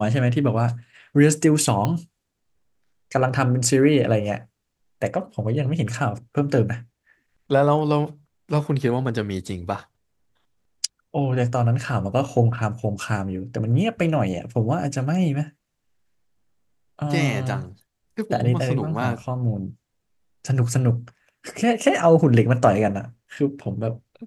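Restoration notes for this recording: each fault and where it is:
1.85 s: pop -10 dBFS

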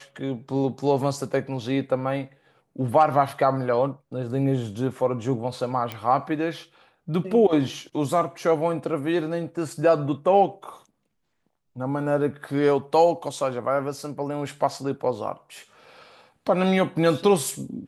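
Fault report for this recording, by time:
5.92 s: pop -16 dBFS

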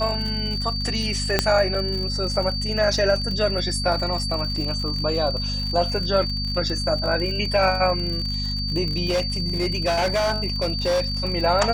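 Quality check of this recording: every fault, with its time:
crackle 61 per s -28 dBFS
hum 50 Hz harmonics 5 -28 dBFS
whine 4.6 kHz -27 dBFS
1.39 s: pop -2 dBFS
4.56 s: dropout 2.8 ms
9.08–11.04 s: clipped -17.5 dBFS

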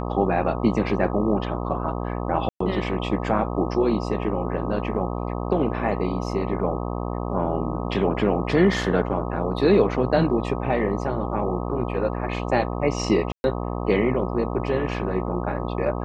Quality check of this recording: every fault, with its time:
buzz 60 Hz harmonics 21 -28 dBFS
2.49–2.60 s: dropout 114 ms
13.32–13.44 s: dropout 121 ms

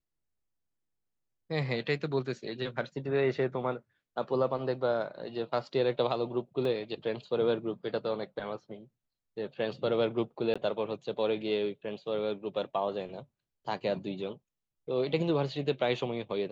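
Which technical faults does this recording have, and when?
6.65 s: dropout 2.3 ms
10.54–10.56 s: dropout 16 ms

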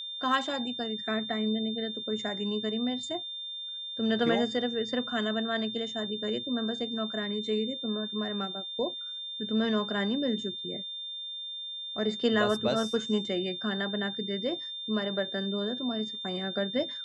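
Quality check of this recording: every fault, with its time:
whine 3.6 kHz -36 dBFS

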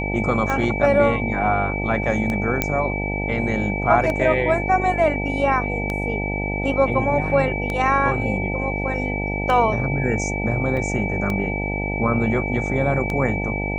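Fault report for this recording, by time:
buzz 50 Hz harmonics 18 -26 dBFS
tick 33 1/3 rpm -12 dBFS
whine 2.3 kHz -27 dBFS
2.62 s: pop -4 dBFS
10.77 s: dropout 4.1 ms

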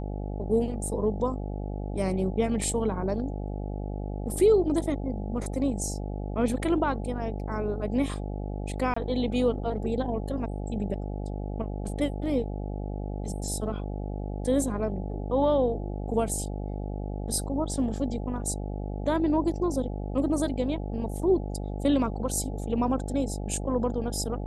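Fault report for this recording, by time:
buzz 50 Hz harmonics 17 -33 dBFS
8.94–8.96 s: dropout 24 ms

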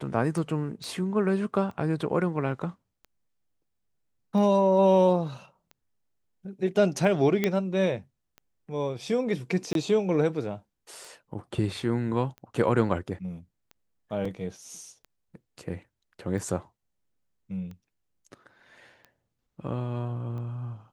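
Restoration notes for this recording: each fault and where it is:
tick 45 rpm
0.84 s: pop -25 dBFS
7.44 s: pop -11 dBFS
9.73–9.75 s: dropout 22 ms
14.25 s: dropout 4 ms

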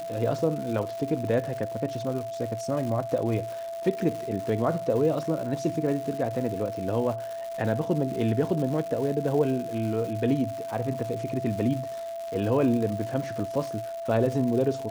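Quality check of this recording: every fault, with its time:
crackle 260 per s -33 dBFS
whine 670 Hz -32 dBFS

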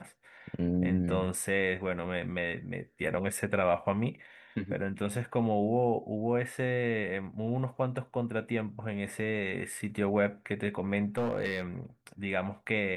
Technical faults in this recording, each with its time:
11.17–11.63 s: clipped -25.5 dBFS

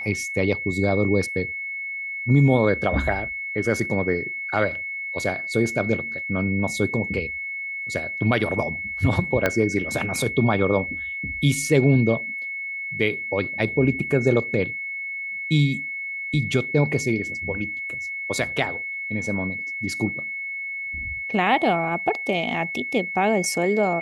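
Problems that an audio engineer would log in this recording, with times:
whine 2.2 kHz -28 dBFS
9.46 s: pop -6 dBFS

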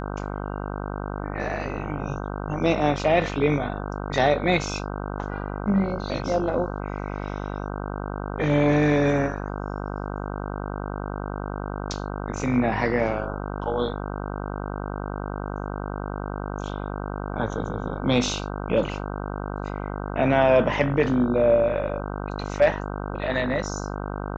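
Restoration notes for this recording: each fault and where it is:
buzz 50 Hz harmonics 31 -31 dBFS

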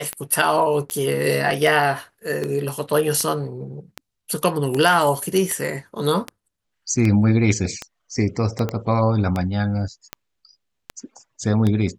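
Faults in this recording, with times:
tick 78 rpm -11 dBFS
8.69 s: pop -12 dBFS

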